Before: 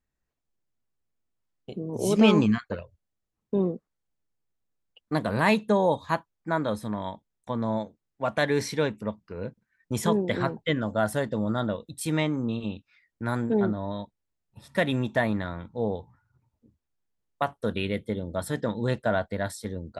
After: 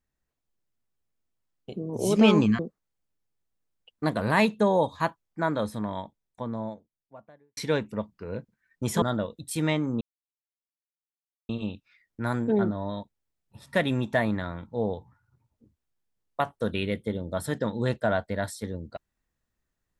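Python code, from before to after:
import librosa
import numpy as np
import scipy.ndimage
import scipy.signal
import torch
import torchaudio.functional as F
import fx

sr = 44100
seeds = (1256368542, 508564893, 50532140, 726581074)

y = fx.studio_fade_out(x, sr, start_s=6.85, length_s=1.81)
y = fx.edit(y, sr, fx.cut(start_s=2.59, length_s=1.09),
    fx.cut(start_s=10.11, length_s=1.41),
    fx.insert_silence(at_s=12.51, length_s=1.48), tone=tone)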